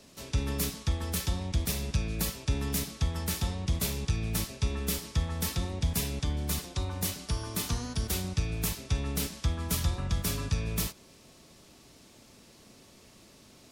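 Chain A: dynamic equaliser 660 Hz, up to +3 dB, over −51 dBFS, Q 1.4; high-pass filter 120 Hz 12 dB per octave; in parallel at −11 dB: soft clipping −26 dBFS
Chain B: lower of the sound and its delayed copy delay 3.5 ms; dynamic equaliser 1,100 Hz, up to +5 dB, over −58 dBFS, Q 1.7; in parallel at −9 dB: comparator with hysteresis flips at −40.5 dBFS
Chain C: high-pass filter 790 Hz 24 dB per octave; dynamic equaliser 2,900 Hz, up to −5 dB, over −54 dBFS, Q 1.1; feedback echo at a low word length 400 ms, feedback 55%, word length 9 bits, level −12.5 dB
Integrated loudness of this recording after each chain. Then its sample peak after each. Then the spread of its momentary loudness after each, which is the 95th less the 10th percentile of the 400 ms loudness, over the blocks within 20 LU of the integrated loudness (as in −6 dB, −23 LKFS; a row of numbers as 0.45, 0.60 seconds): −32.0, −32.0, −37.0 LKFS; −15.5, −16.5, −19.5 dBFS; 4, 3, 20 LU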